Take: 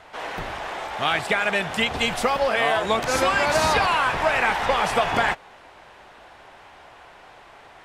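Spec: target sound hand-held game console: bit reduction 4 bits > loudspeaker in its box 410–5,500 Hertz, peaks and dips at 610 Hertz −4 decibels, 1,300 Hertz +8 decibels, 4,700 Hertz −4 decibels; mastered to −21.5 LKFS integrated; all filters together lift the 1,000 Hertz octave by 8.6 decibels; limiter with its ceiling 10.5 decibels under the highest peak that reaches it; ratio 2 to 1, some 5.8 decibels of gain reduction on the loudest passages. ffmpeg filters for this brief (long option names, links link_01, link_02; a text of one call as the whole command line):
ffmpeg -i in.wav -af "equalizer=frequency=1000:width_type=o:gain=8,acompressor=threshold=-22dB:ratio=2,alimiter=limit=-18dB:level=0:latency=1,acrusher=bits=3:mix=0:aa=0.000001,highpass=410,equalizer=frequency=610:width_type=q:width=4:gain=-4,equalizer=frequency=1300:width_type=q:width=4:gain=8,equalizer=frequency=4700:width_type=q:width=4:gain=-4,lowpass=frequency=5500:width=0.5412,lowpass=frequency=5500:width=1.3066,volume=3.5dB" out.wav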